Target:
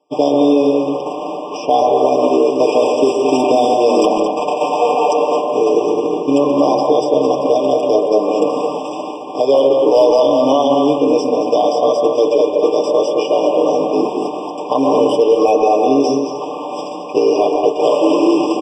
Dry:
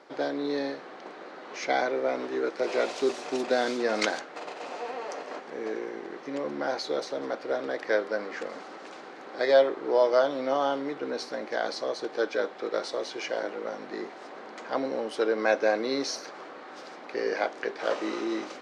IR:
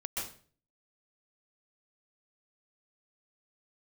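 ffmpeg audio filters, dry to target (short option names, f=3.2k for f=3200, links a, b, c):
-filter_complex "[0:a]equalizer=f=7.7k:w=8:g=6,aecho=1:1:6.7:0.79,bandreject=f=110.4:t=h:w=4,bandreject=f=220.8:t=h:w=4,bandreject=f=331.2:t=h:w=4,bandreject=f=441.6:t=h:w=4,bandreject=f=552:t=h:w=4,bandreject=f=662.4:t=h:w=4,bandreject=f=772.8:t=h:w=4,bandreject=f=883.2:t=h:w=4,bandreject=f=993.6:t=h:w=4,bandreject=f=1.104k:t=h:w=4,bandreject=f=1.2144k:t=h:w=4,bandreject=f=1.3248k:t=h:w=4,bandreject=f=1.4352k:t=h:w=4,bandreject=f=1.5456k:t=h:w=4,bandreject=f=1.656k:t=h:w=4,bandreject=f=1.7664k:t=h:w=4,bandreject=f=1.8768k:t=h:w=4,bandreject=f=1.9872k:t=h:w=4,bandreject=f=2.0976k:t=h:w=4,bandreject=f=2.208k:t=h:w=4,bandreject=f=2.3184k:t=h:w=4,bandreject=f=2.4288k:t=h:w=4,bandreject=f=2.5392k:t=h:w=4,bandreject=f=2.6496k:t=h:w=4,bandreject=f=2.76k:t=h:w=4,bandreject=f=2.8704k:t=h:w=4,bandreject=f=2.9808k:t=h:w=4,bandreject=f=3.0912k:t=h:w=4,bandreject=f=3.2016k:t=h:w=4,bandreject=f=3.312k:t=h:w=4,bandreject=f=3.4224k:t=h:w=4,bandreject=f=3.5328k:t=h:w=4,bandreject=f=3.6432k:t=h:w=4,areverse,acompressor=mode=upward:threshold=-33dB:ratio=2.5,areverse,highshelf=f=3.3k:g=6,asoftclip=type=hard:threshold=-13dB,acrossover=split=1500|6100[a][b][c];[a]acompressor=threshold=-31dB:ratio=4[d];[b]acompressor=threshold=-43dB:ratio=4[e];[c]acompressor=threshold=-57dB:ratio=4[f];[d][e][f]amix=inputs=3:normalize=0,agate=range=-33dB:threshold=-32dB:ratio=3:detection=peak,asplit=2[g][h];[h]adelay=221.6,volume=-7dB,highshelf=f=4k:g=-4.99[i];[g][i]amix=inputs=2:normalize=0,asplit=2[j][k];[1:a]atrim=start_sample=2205,lowpass=2.1k[l];[k][l]afir=irnorm=-1:irlink=0,volume=-3dB[m];[j][m]amix=inputs=2:normalize=0,alimiter=level_in=19.5dB:limit=-1dB:release=50:level=0:latency=1,afftfilt=real='re*eq(mod(floor(b*sr/1024/1200),2),0)':imag='im*eq(mod(floor(b*sr/1024/1200),2),0)':win_size=1024:overlap=0.75,volume=-1.5dB"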